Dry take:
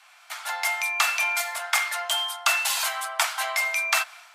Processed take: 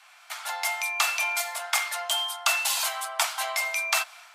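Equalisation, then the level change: dynamic EQ 1700 Hz, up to -5 dB, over -38 dBFS, Q 1.3; 0.0 dB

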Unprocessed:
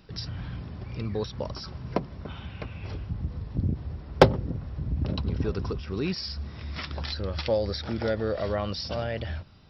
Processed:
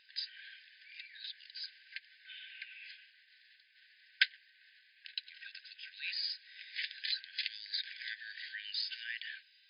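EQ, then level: brick-wall FIR band-pass 1500–5100 Hz; 0.0 dB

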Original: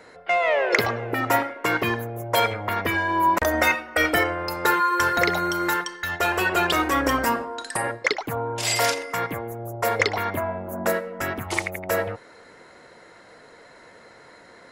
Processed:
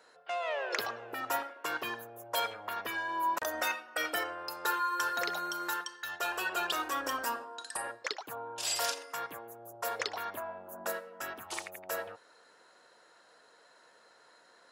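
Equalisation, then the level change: HPF 1100 Hz 6 dB/oct; bell 2100 Hz -13 dB 0.25 oct; -7.5 dB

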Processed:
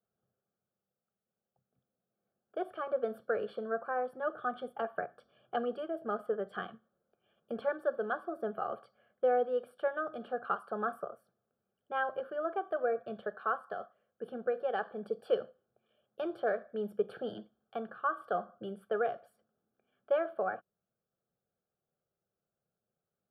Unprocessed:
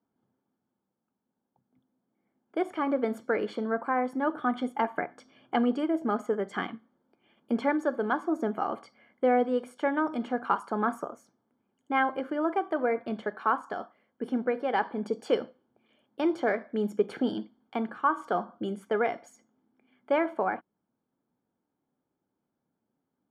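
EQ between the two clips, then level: bell 5200 Hz -9 dB 2.1 oct; fixed phaser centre 1400 Hz, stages 8; -2.0 dB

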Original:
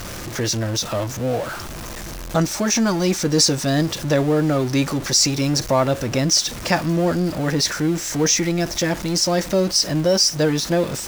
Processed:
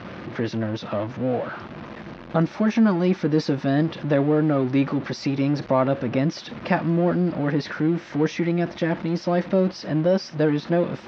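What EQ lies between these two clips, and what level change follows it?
BPF 130–4200 Hz; air absorption 290 m; bell 220 Hz +4.5 dB 0.63 oct; -1.5 dB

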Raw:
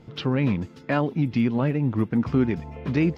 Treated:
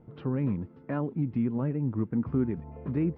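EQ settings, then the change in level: dynamic EQ 700 Hz, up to -6 dB, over -41 dBFS, Q 1.8; LPF 1100 Hz 12 dB/oct; -5.5 dB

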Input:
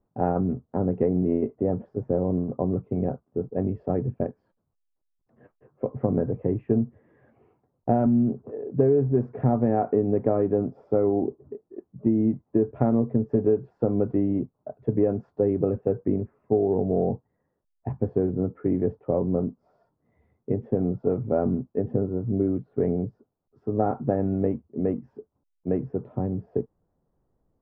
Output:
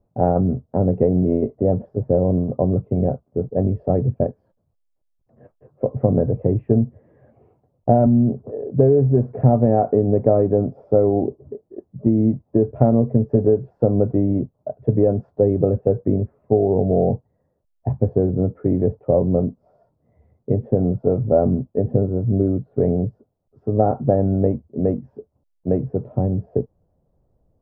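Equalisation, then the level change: bell 95 Hz +5 dB 2.3 oct; low shelf 210 Hz +10.5 dB; bell 600 Hz +11.5 dB 0.97 oct; -3.5 dB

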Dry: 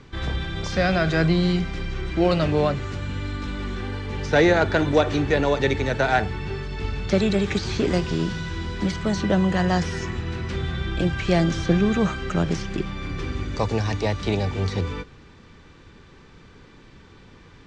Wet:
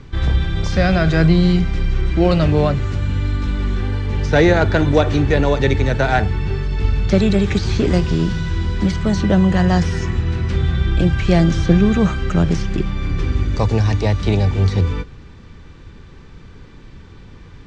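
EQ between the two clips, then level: low shelf 150 Hz +11 dB; +2.5 dB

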